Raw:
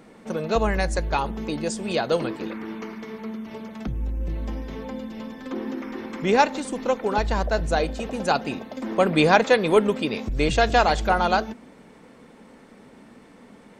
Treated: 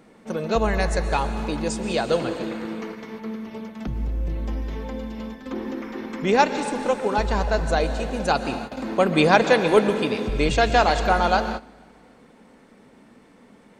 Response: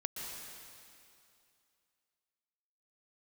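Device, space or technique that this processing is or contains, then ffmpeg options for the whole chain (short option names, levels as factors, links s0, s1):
keyed gated reverb: -filter_complex "[0:a]asplit=3[s0][s1][s2];[1:a]atrim=start_sample=2205[s3];[s1][s3]afir=irnorm=-1:irlink=0[s4];[s2]apad=whole_len=608484[s5];[s4][s5]sidechaingate=range=0.126:threshold=0.0158:ratio=16:detection=peak,volume=0.708[s6];[s0][s6]amix=inputs=2:normalize=0,volume=0.668"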